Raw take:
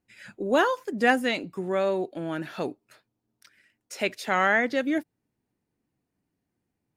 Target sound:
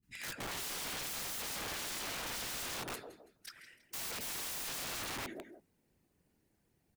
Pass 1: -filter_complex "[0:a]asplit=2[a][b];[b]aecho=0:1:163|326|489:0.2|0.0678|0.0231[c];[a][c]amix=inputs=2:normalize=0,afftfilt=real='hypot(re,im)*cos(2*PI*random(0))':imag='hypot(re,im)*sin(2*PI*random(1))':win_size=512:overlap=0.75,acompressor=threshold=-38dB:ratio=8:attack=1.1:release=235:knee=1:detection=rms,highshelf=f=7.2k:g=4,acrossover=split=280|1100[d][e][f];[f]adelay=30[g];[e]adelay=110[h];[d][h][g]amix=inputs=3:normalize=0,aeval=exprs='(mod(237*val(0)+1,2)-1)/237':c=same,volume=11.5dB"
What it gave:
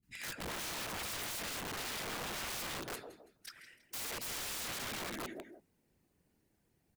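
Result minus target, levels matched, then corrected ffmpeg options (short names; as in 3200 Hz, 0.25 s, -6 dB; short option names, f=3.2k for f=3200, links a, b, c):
compressor: peak gain reduction +5 dB
-filter_complex "[0:a]asplit=2[a][b];[b]aecho=0:1:163|326|489:0.2|0.0678|0.0231[c];[a][c]amix=inputs=2:normalize=0,afftfilt=real='hypot(re,im)*cos(2*PI*random(0))':imag='hypot(re,im)*sin(2*PI*random(1))':win_size=512:overlap=0.75,acompressor=threshold=-32dB:ratio=8:attack=1.1:release=235:knee=1:detection=rms,highshelf=f=7.2k:g=4,acrossover=split=280|1100[d][e][f];[f]adelay=30[g];[e]adelay=110[h];[d][h][g]amix=inputs=3:normalize=0,aeval=exprs='(mod(237*val(0)+1,2)-1)/237':c=same,volume=11.5dB"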